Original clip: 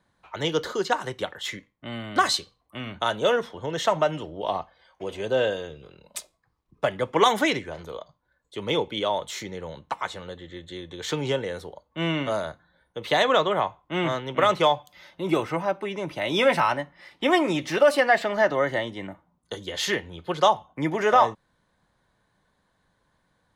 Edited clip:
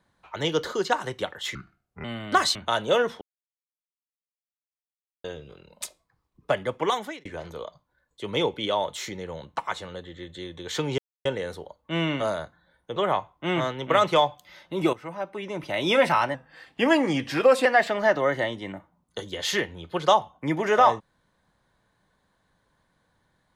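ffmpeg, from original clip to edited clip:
-filter_complex "[0:a]asplit=12[a][b][c][d][e][f][g][h][i][j][k][l];[a]atrim=end=1.554[m];[b]atrim=start=1.55:end=1.88,asetpts=PTS-STARTPTS,asetrate=29547,aresample=44100[n];[c]atrim=start=1.876:end=2.392[o];[d]atrim=start=2.888:end=3.55,asetpts=PTS-STARTPTS,afade=t=out:st=0.658:d=0.004:c=hsin[p];[e]atrim=start=3.55:end=5.58,asetpts=PTS-STARTPTS,volume=0[q];[f]atrim=start=5.58:end=7.59,asetpts=PTS-STARTPTS,afade=t=in:d=0.004:c=hsin,afade=t=out:st=1.3:d=0.71[r];[g]atrim=start=7.59:end=11.32,asetpts=PTS-STARTPTS,afade=t=in:d=0.004:c=hsin,afade=t=out:st=3.726:d=0.004:c=hsin,apad=pad_dur=0.27[s];[h]atrim=start=11.32:end=13.032,asetpts=PTS-STARTPTS,afade=t=in:d=0.004:c=hsin[t];[i]atrim=start=13.438:end=15.41,asetpts=PTS-STARTPTS,afade=t=out:st=1.968:d=0.004:c=hsin:silence=0.177828[u];[j]atrim=start=15.41:end=16.824,asetpts=PTS-STARTPTS,afade=t=in:d=0.78:silence=0.177828[v];[k]atrim=start=16.82:end=18,asetpts=PTS-STARTPTS,asetrate=39690,aresample=44100[w];[l]atrim=start=17.996[x];[m][n]acrossfade=d=0.004:c1=hsin:c2=hsin[y];[y][o]acrossfade=d=0.004:c1=hsin:c2=hsin[z];[p][q][r][s][t]concat=n=5:v=0:a=1[aa];[z][aa]acrossfade=d=0.004:c1=hsin:c2=hsin[ab];[u][v]concat=n=2:v=0:a=1[ac];[ab][ac]acrossfade=d=0.004:c1=hsin:c2=hsin[ad];[ad][w]acrossfade=d=0.004:c1=hsin:c2=hsin[ae];[ae][x]acrossfade=d=0.004:c1=hsin:c2=hsin"

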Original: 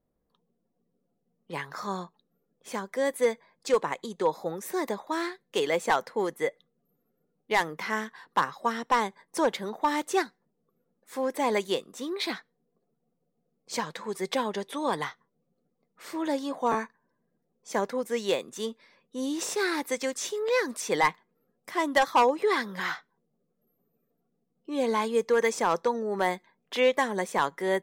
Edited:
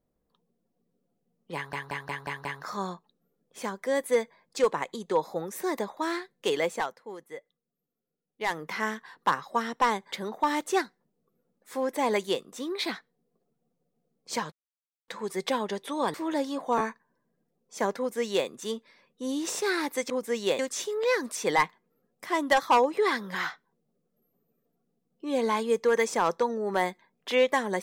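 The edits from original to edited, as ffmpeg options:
-filter_complex "[0:a]asplit=13[a][b][c][d][e][f][g][h][i][j][k][l][m];[a]atrim=end=1.732[n];[b]atrim=start=1.548:end=1.732[o];[c]atrim=start=1.548:end=1.732[p];[d]atrim=start=1.548:end=1.732[q];[e]atrim=start=1.548:end=1.732[r];[f]atrim=start=1.548:end=6.05,asetpts=PTS-STARTPTS,afade=t=out:st=4.142:d=0.36:silence=0.223872[s];[g]atrim=start=6.05:end=7.41,asetpts=PTS-STARTPTS,volume=-13dB[t];[h]atrim=start=7.41:end=9.222,asetpts=PTS-STARTPTS,afade=t=in:d=0.36:silence=0.223872[u];[i]atrim=start=9.528:end=13.93,asetpts=PTS-STARTPTS,afade=t=out:st=4.398:d=0.004:c=hsin,apad=pad_dur=0.56[v];[j]atrim=start=13.93:end=14.992,asetpts=PTS-STARTPTS,afade=t=in:d=0.004:c=hsin[w];[k]atrim=start=16.078:end=20.042[x];[l]atrim=start=17.918:end=18.412[y];[m]atrim=start=20.038[z];[n][o]acrossfade=d=0.004:c1=hsin:c2=hsin[aa];[aa][p]acrossfade=d=0.004:c1=hsin:c2=hsin[ab];[ab][q]acrossfade=d=0.004:c1=hsin:c2=hsin[ac];[ac][r]acrossfade=d=0.004:c1=hsin:c2=hsin[ad];[s][t][u]concat=n=3:v=0:a=1[ae];[ad][ae]acrossfade=d=0.004:c1=hsin:c2=hsin[af];[v][w]concat=n=2:v=0:a=1[ag];[af][ag]acrossfade=d=0.004:c1=hsin:c2=hsin[ah];[ah][x]acrossfade=d=0.004:c1=hsin:c2=hsin[ai];[ai][y]acrossfade=d=0.004:c1=hsin:c2=hsin[aj];[aj][z]acrossfade=d=0.004:c1=hsin:c2=hsin"

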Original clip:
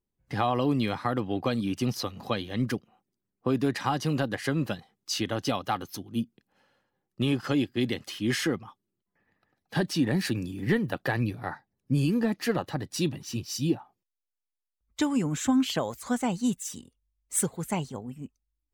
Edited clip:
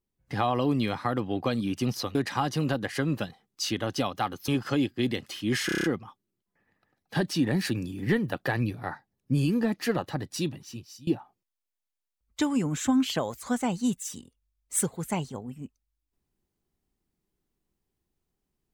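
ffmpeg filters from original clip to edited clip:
-filter_complex "[0:a]asplit=10[a][b][c][d][e][f][g][h][i][j];[a]atrim=end=2.152[k];[b]atrim=start=3.638:end=5.972[l];[c]atrim=start=7.258:end=8.472[m];[d]atrim=start=8.438:end=8.472[n];[e]atrim=start=8.438:end=8.472[o];[f]atrim=start=8.438:end=8.472[p];[g]atrim=start=8.438:end=8.472[q];[h]atrim=start=8.438:end=8.472[r];[i]atrim=start=8.438:end=13.67,asetpts=PTS-STARTPTS,afade=t=out:st=4.402:d=0.83:silence=0.0668344[s];[j]atrim=start=13.67,asetpts=PTS-STARTPTS,afade=t=in:d=0.004:c=hsin:silence=0.0668344[t];[k][l]acrossfade=d=0.004:c1=hsin:c2=hsin[u];[u][m]acrossfade=d=0.004:c1=hsin:c2=hsin[v];[v][n]acrossfade=d=0.004:c1=hsin:c2=hsin[w];[w][o]acrossfade=d=0.004:c1=hsin:c2=hsin[x];[x][p]acrossfade=d=0.004:c1=hsin:c2=hsin[y];[y][q]acrossfade=d=0.004:c1=hsin:c2=hsin[z];[z][r]acrossfade=d=0.004:c1=hsin:c2=hsin[aa];[s][t]concat=n=2:v=0:a=1[ab];[aa][ab]acrossfade=d=0.004:c1=hsin:c2=hsin"

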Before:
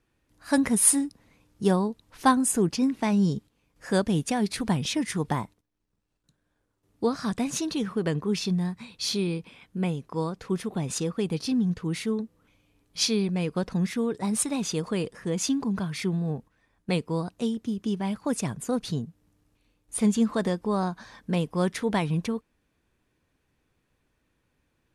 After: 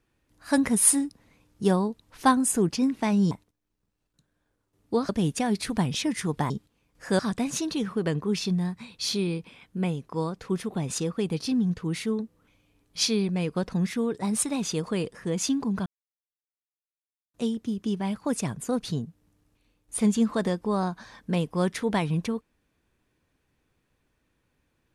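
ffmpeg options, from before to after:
-filter_complex "[0:a]asplit=7[a][b][c][d][e][f][g];[a]atrim=end=3.312[h];[b]atrim=start=5.408:end=7.192[i];[c]atrim=start=3.998:end=5.412[j];[d]atrim=start=3.308:end=4.002[k];[e]atrim=start=7.188:end=15.86,asetpts=PTS-STARTPTS,afade=t=out:st=8.668:d=0.004:c=hsin[l];[f]atrim=start=15.86:end=17.34,asetpts=PTS-STARTPTS,volume=0[m];[g]atrim=start=17.34,asetpts=PTS-STARTPTS,afade=t=in:d=0.004:c=hsin[n];[h][i]acrossfade=d=0.004:c1=hsin:c2=hsin[o];[o][j]acrossfade=d=0.004:c1=hsin:c2=hsin[p];[p][k]acrossfade=d=0.004:c1=hsin:c2=hsin[q];[l][m][n]concat=n=3:v=0:a=1[r];[q][r]acrossfade=d=0.004:c1=hsin:c2=hsin"

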